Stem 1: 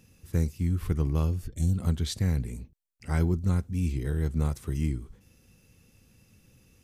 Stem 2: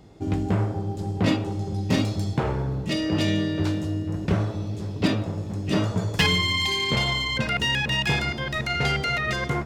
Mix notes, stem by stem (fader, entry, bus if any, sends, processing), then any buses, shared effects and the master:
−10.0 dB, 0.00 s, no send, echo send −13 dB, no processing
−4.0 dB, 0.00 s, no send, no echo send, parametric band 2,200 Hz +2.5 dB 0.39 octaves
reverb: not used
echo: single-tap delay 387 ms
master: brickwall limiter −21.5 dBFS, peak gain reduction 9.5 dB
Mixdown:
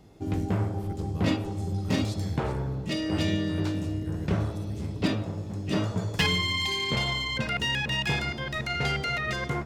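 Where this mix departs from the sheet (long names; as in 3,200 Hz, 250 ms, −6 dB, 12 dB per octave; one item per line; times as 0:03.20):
stem 2: missing parametric band 2,200 Hz +2.5 dB 0.39 octaves
master: missing brickwall limiter −21.5 dBFS, peak gain reduction 9.5 dB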